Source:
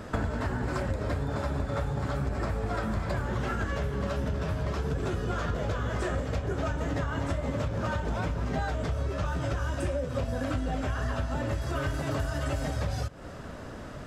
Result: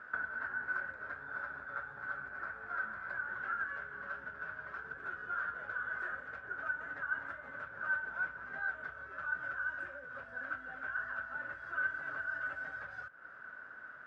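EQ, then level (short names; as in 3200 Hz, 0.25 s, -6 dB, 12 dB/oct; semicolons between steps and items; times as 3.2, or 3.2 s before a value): band-pass 1500 Hz, Q 16; tilt -1.5 dB/oct; +9.5 dB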